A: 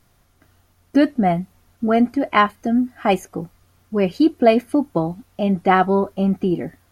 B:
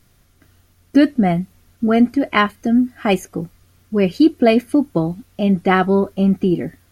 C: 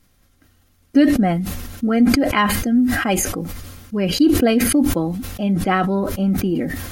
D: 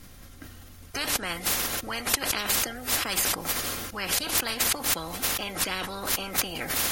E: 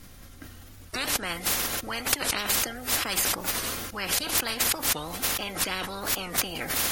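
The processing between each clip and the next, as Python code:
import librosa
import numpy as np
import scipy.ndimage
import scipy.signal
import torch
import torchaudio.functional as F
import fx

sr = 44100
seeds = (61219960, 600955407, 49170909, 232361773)

y1 = fx.peak_eq(x, sr, hz=850.0, db=-7.5, octaves=1.2)
y1 = y1 * librosa.db_to_amplitude(4.0)
y2 = y1 + 0.37 * np.pad(y1, (int(3.8 * sr / 1000.0), 0))[:len(y1)]
y2 = fx.sustainer(y2, sr, db_per_s=38.0)
y2 = y2 * librosa.db_to_amplitude(-4.0)
y3 = fx.spectral_comp(y2, sr, ratio=10.0)
y3 = y3 * librosa.db_to_amplitude(-3.5)
y4 = fx.record_warp(y3, sr, rpm=45.0, depth_cents=160.0)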